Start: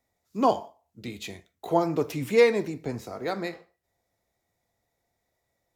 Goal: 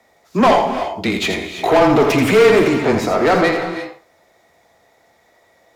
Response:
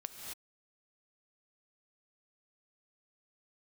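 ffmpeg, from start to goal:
-filter_complex "[0:a]asplit=2[link_01][link_02];[link_02]highpass=frequency=720:poles=1,volume=30dB,asoftclip=type=tanh:threshold=-7.5dB[link_03];[link_01][link_03]amix=inputs=2:normalize=0,lowpass=frequency=1900:poles=1,volume=-6dB,afreqshift=-18,asplit=2[link_04][link_05];[1:a]atrim=start_sample=2205,adelay=83[link_06];[link_05][link_06]afir=irnorm=-1:irlink=0,volume=-3.5dB[link_07];[link_04][link_07]amix=inputs=2:normalize=0,volume=3.5dB"

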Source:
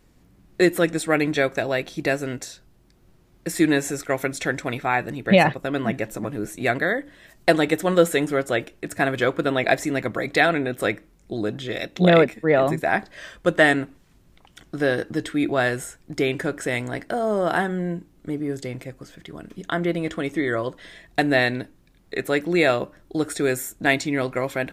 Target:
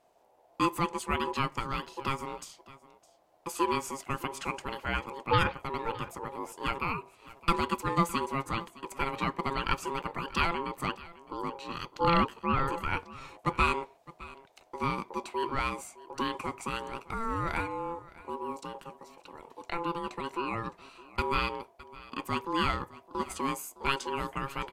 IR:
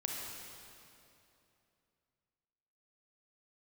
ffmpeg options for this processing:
-af "aecho=1:1:612:0.106,aeval=exprs='val(0)*sin(2*PI*680*n/s)':channel_layout=same,volume=-7dB"

